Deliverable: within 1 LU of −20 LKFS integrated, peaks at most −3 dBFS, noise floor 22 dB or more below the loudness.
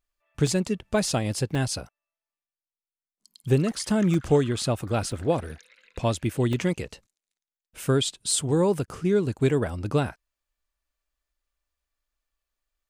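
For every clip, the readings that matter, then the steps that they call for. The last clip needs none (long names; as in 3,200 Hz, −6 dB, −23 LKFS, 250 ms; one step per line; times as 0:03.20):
number of dropouts 6; longest dropout 2.6 ms; integrated loudness −25.5 LKFS; sample peak −9.5 dBFS; target loudness −20.0 LKFS
→ repair the gap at 0:00.47/0:01.55/0:04.14/0:05.12/0:06.53/0:08.31, 2.6 ms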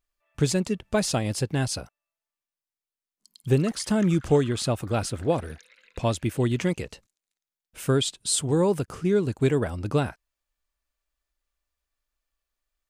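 number of dropouts 0; integrated loudness −25.5 LKFS; sample peak −9.5 dBFS; target loudness −20.0 LKFS
→ level +5.5 dB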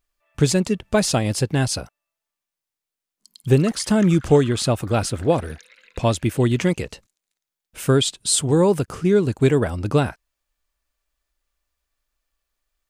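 integrated loudness −20.0 LKFS; sample peak −4.0 dBFS; background noise floor −87 dBFS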